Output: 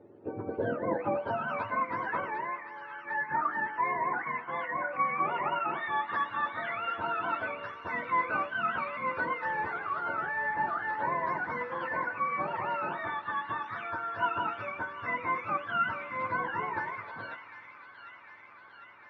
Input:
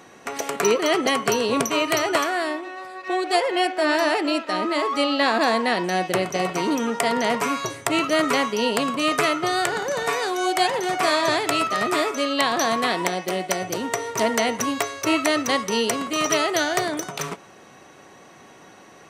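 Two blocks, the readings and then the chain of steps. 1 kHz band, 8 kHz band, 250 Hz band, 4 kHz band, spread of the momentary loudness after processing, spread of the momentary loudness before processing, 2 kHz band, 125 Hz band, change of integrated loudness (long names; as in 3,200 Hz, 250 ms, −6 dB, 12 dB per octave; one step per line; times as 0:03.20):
−6.5 dB, below −40 dB, −18.0 dB, −24.5 dB, 11 LU, 6 LU, −7.5 dB, −9.0 dB, −10.0 dB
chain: frequency axis turned over on the octave scale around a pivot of 800 Hz
high-frequency loss of the air 81 metres
delay with a high-pass on its return 752 ms, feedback 71%, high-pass 2,200 Hz, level −8.5 dB
feedback delay network reverb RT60 3.2 s, high-frequency decay 0.8×, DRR 17 dB
band-pass filter sweep 410 Hz → 1,300 Hz, 0:00.47–0:01.90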